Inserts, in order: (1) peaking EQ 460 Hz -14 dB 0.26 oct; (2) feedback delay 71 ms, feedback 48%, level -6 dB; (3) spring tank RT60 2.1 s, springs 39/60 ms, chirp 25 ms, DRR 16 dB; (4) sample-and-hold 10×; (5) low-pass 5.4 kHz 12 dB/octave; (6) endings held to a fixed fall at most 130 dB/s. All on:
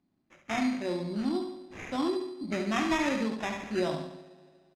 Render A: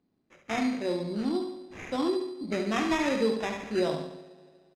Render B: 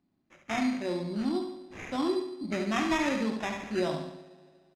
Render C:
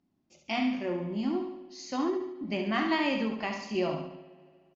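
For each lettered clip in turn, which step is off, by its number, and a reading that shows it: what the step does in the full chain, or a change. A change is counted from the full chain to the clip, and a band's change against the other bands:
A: 1, 500 Hz band +3.5 dB; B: 6, momentary loudness spread change -2 LU; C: 4, distortion -5 dB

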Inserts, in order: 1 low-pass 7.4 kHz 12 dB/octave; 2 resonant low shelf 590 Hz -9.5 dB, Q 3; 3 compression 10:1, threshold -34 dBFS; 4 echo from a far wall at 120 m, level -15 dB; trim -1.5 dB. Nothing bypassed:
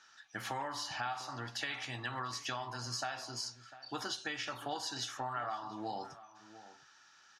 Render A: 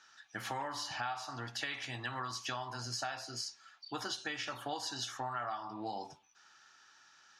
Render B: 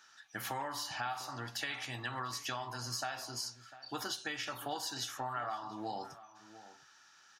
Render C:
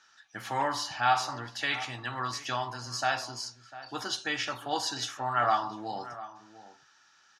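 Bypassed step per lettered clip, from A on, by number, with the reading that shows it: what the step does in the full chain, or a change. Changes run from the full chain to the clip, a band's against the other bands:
4, echo-to-direct -17.0 dB to none; 1, 8 kHz band +2.0 dB; 3, mean gain reduction 5.5 dB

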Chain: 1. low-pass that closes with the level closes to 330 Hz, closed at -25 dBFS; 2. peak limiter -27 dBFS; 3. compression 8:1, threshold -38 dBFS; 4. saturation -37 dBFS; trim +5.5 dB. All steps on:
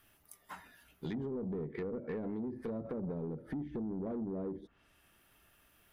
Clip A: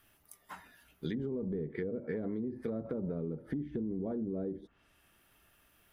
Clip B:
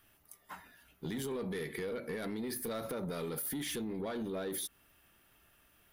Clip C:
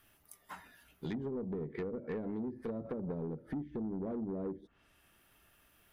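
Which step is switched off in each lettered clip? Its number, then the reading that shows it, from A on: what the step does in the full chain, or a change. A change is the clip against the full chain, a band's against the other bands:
4, distortion -16 dB; 1, 2 kHz band +9.0 dB; 2, mean gain reduction 2.5 dB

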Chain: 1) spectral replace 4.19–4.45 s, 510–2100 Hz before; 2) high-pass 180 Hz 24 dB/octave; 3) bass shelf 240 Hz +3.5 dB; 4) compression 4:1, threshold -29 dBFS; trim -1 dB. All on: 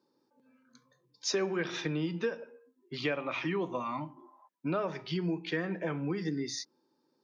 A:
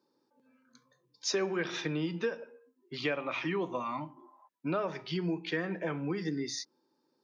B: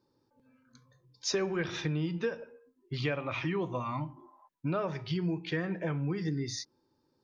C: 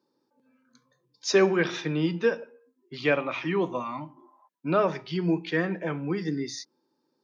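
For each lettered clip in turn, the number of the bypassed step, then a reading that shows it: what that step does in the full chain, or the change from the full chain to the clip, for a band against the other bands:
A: 3, 125 Hz band -1.5 dB; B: 2, 125 Hz band +5.5 dB; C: 4, crest factor change +3.0 dB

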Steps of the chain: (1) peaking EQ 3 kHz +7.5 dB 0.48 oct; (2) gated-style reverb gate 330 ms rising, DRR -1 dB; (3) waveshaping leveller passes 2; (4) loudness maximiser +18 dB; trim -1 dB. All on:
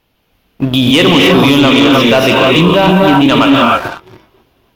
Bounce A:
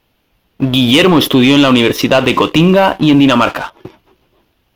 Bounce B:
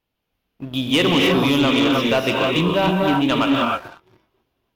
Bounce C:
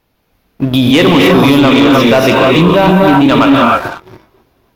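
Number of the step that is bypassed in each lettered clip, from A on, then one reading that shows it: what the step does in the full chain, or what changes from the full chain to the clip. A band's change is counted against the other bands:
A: 2, crest factor change +2.0 dB; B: 4, crest factor change +3.0 dB; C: 1, 4 kHz band -5.0 dB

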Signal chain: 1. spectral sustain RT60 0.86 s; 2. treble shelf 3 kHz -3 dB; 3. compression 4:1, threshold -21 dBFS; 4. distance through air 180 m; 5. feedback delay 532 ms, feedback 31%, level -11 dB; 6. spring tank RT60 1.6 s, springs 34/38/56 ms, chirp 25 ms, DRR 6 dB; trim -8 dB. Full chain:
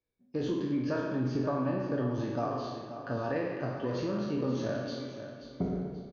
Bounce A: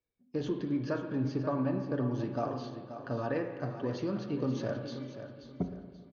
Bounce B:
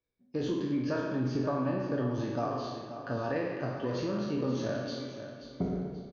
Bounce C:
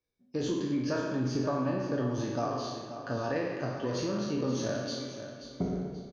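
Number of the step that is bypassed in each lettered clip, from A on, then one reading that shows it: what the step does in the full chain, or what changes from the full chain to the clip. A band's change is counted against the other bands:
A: 1, 125 Hz band +2.0 dB; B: 2, 4 kHz band +2.0 dB; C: 4, 4 kHz band +5.5 dB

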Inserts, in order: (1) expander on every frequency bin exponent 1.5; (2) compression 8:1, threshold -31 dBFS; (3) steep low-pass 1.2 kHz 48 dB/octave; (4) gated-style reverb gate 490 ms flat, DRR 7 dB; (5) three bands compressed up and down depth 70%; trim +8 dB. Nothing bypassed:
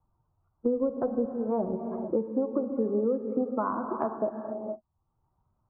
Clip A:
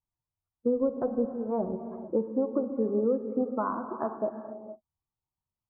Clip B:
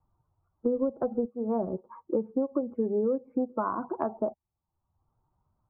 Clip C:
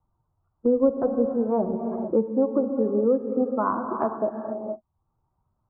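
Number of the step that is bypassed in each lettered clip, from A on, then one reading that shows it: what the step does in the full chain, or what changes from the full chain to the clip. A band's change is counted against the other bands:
5, crest factor change -2.0 dB; 4, momentary loudness spread change -2 LU; 2, mean gain reduction 4.0 dB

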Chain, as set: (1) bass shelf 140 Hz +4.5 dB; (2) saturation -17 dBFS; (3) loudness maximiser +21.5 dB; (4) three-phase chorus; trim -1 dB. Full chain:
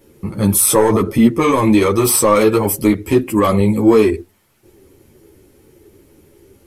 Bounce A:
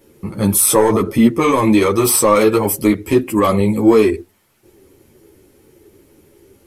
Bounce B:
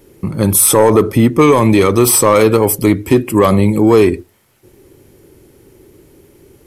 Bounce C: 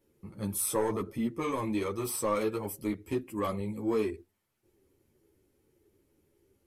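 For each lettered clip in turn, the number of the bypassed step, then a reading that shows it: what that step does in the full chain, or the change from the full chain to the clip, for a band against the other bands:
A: 1, 125 Hz band -2.0 dB; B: 4, 250 Hz band -1.5 dB; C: 3, crest factor change +2.0 dB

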